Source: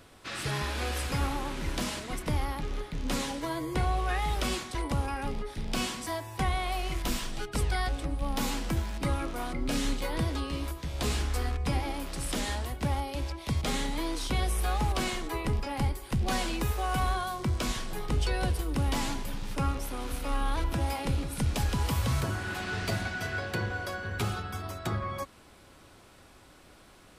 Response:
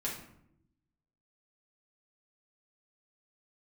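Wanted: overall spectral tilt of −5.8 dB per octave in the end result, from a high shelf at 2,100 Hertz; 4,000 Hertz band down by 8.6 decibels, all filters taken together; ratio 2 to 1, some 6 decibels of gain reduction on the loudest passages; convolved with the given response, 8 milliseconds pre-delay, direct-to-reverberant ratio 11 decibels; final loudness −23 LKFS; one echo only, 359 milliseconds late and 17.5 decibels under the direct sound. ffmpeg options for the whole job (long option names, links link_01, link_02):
-filter_complex "[0:a]highshelf=frequency=2100:gain=-8,equalizer=frequency=4000:width_type=o:gain=-3.5,acompressor=threshold=-35dB:ratio=2,aecho=1:1:359:0.133,asplit=2[link_01][link_02];[1:a]atrim=start_sample=2205,adelay=8[link_03];[link_02][link_03]afir=irnorm=-1:irlink=0,volume=-14dB[link_04];[link_01][link_04]amix=inputs=2:normalize=0,volume=14.5dB"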